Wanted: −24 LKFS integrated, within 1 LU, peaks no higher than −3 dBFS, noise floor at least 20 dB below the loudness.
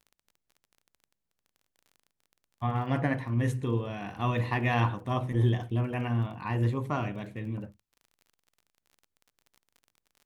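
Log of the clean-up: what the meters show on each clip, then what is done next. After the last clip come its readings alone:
crackle rate 31 per second; integrated loudness −30.5 LKFS; sample peak −12.0 dBFS; target loudness −24.0 LKFS
→ click removal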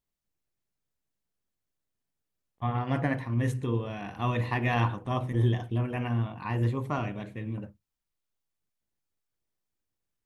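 crackle rate 0 per second; integrated loudness −30.5 LKFS; sample peak −12.0 dBFS; target loudness −24.0 LKFS
→ level +6.5 dB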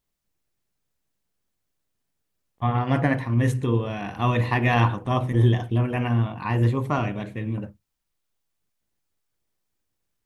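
integrated loudness −24.0 LKFS; sample peak −5.5 dBFS; background noise floor −78 dBFS

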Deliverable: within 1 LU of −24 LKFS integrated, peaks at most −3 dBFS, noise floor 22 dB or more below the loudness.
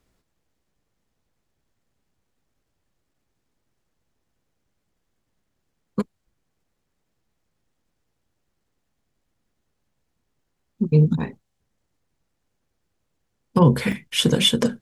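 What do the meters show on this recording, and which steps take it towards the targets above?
number of dropouts 1; longest dropout 3.4 ms; integrated loudness −20.5 LKFS; sample peak −3.0 dBFS; target loudness −24.0 LKFS
→ repair the gap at 0:13.92, 3.4 ms
level −3.5 dB

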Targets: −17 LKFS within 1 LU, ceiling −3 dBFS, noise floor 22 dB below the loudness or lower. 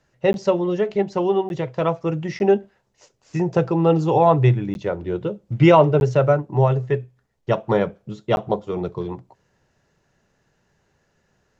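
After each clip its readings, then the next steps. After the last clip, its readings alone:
number of dropouts 6; longest dropout 11 ms; integrated loudness −20.5 LKFS; sample peak −2.0 dBFS; target loudness −17.0 LKFS
→ repair the gap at 0:00.33/0:01.49/0:02.39/0:04.74/0:06.00/0:08.36, 11 ms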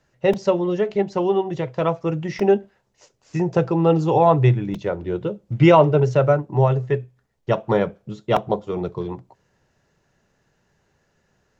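number of dropouts 0; integrated loudness −20.5 LKFS; sample peak −2.0 dBFS; target loudness −17.0 LKFS
→ level +3.5 dB
brickwall limiter −3 dBFS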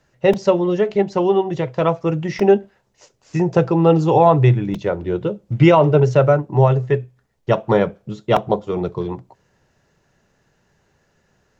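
integrated loudness −17.5 LKFS; sample peak −3.0 dBFS; background noise floor −64 dBFS

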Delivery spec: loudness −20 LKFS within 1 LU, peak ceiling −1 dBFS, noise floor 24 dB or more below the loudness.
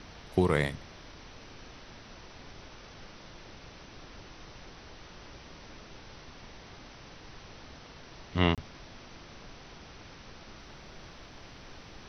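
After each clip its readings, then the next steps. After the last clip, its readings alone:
number of dropouts 1; longest dropout 27 ms; background noise floor −50 dBFS; target noise floor −54 dBFS; integrated loudness −30.0 LKFS; sample peak −9.0 dBFS; target loudness −20.0 LKFS
→ repair the gap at 0:08.55, 27 ms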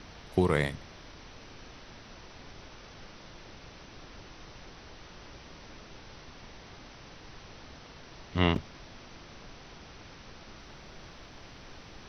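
number of dropouts 0; background noise floor −50 dBFS; target noise floor −54 dBFS
→ noise reduction from a noise print 6 dB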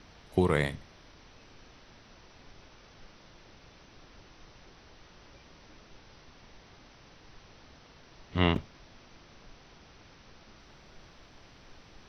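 background noise floor −56 dBFS; integrated loudness −30.0 LKFS; sample peak −9.0 dBFS; target loudness −20.0 LKFS
→ level +10 dB
brickwall limiter −1 dBFS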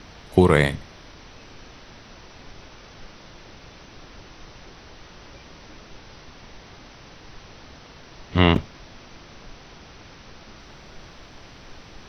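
integrated loudness −20.5 LKFS; sample peak −1.0 dBFS; background noise floor −46 dBFS

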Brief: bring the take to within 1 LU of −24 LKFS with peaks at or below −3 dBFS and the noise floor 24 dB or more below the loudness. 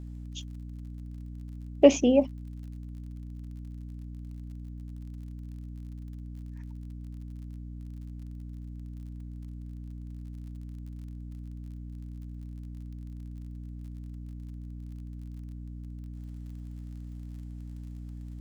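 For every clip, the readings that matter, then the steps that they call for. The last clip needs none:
crackle rate 43 per second; mains hum 60 Hz; hum harmonics up to 300 Hz; level of the hum −38 dBFS; integrated loudness −35.0 LKFS; sample peak −3.5 dBFS; target loudness −24.0 LKFS
→ click removal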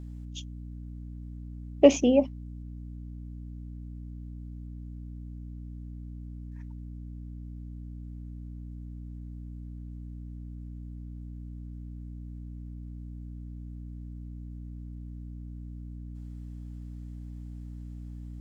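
crackle rate 0 per second; mains hum 60 Hz; hum harmonics up to 300 Hz; level of the hum −38 dBFS
→ hum removal 60 Hz, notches 5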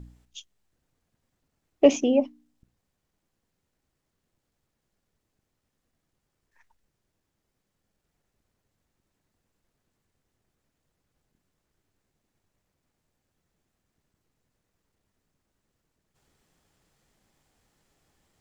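mains hum none found; integrated loudness −22.0 LKFS; sample peak −3.5 dBFS; target loudness −24.0 LKFS
→ level −2 dB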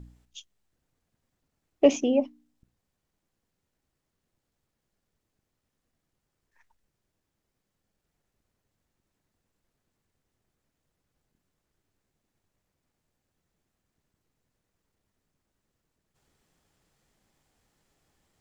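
integrated loudness −24.0 LKFS; sample peak −5.5 dBFS; background noise floor −83 dBFS

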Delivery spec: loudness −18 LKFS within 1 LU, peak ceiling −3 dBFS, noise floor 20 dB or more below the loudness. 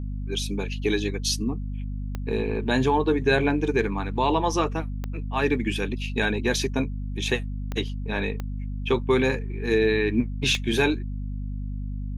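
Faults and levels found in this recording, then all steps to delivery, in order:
number of clicks 5; mains hum 50 Hz; hum harmonics up to 250 Hz; level of the hum −28 dBFS; integrated loudness −26.0 LKFS; sample peak −7.0 dBFS; target loudness −18.0 LKFS
→ click removal
mains-hum notches 50/100/150/200/250 Hz
level +8 dB
brickwall limiter −3 dBFS

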